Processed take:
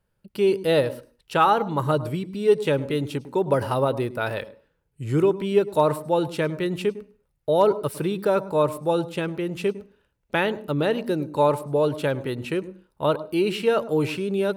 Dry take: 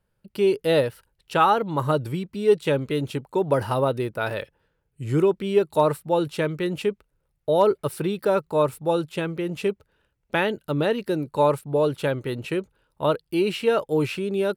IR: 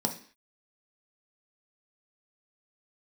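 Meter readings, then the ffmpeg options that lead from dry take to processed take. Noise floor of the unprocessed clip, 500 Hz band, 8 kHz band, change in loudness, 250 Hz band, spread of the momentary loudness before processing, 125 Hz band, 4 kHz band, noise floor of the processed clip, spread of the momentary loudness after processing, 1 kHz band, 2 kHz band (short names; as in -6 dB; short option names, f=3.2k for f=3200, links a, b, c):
-74 dBFS, 0.0 dB, 0.0 dB, 0.0 dB, +0.5 dB, 8 LU, 0.0 dB, 0.0 dB, -72 dBFS, 9 LU, 0.0 dB, 0.0 dB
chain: -filter_complex "[0:a]asplit=2[a][b];[1:a]atrim=start_sample=2205,asetrate=48510,aresample=44100,adelay=103[c];[b][c]afir=irnorm=-1:irlink=0,volume=-24dB[d];[a][d]amix=inputs=2:normalize=0"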